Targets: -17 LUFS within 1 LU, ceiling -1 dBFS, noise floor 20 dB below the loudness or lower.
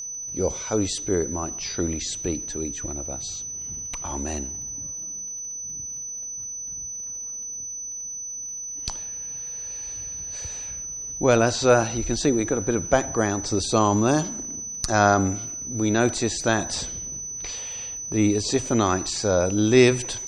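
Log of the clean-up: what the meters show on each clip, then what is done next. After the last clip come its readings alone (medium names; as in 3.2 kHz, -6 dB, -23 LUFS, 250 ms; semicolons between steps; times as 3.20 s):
tick rate 44 per s; steady tone 6 kHz; tone level -31 dBFS; loudness -25.0 LUFS; peak level -3.0 dBFS; loudness target -17.0 LUFS
-> de-click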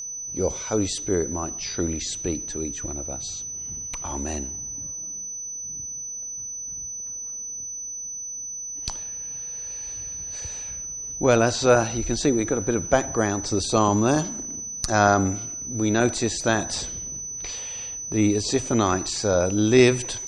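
tick rate 0.099 per s; steady tone 6 kHz; tone level -31 dBFS
-> band-stop 6 kHz, Q 30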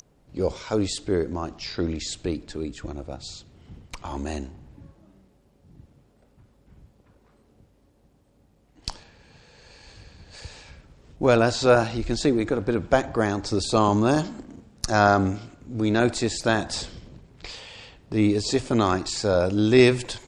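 steady tone not found; loudness -23.5 LUFS; peak level -3.0 dBFS; loudness target -17.0 LUFS
-> trim +6.5 dB; peak limiter -1 dBFS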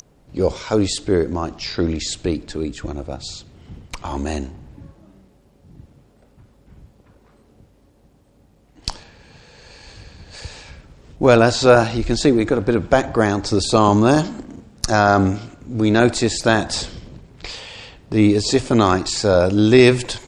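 loudness -17.5 LUFS; peak level -1.0 dBFS; noise floor -55 dBFS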